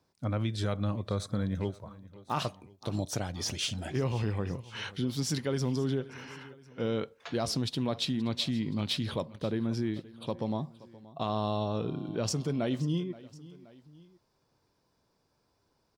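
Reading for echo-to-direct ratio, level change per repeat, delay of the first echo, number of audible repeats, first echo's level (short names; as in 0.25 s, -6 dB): -18.5 dB, -5.5 dB, 0.525 s, 2, -19.5 dB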